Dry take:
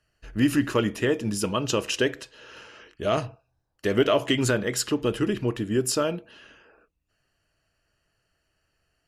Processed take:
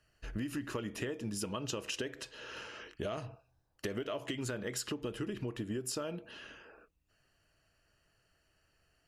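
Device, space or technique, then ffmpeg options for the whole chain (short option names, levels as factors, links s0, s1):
serial compression, peaks first: -af "acompressor=threshold=0.0316:ratio=6,acompressor=threshold=0.0126:ratio=2"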